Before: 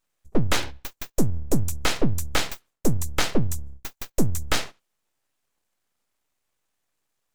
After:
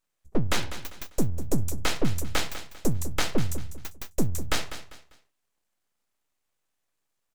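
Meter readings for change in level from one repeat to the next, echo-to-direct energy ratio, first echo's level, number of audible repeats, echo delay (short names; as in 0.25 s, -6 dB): -10.0 dB, -11.5 dB, -12.0 dB, 3, 0.198 s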